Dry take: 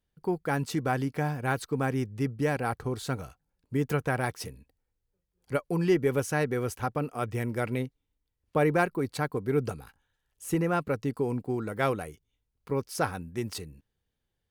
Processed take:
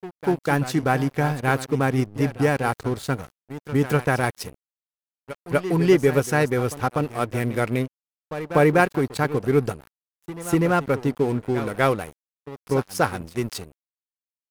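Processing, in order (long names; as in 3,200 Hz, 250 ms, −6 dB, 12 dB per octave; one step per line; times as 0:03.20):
echo ahead of the sound 245 ms −12 dB
dead-zone distortion −43.5 dBFS
tape wow and flutter 26 cents
level +8 dB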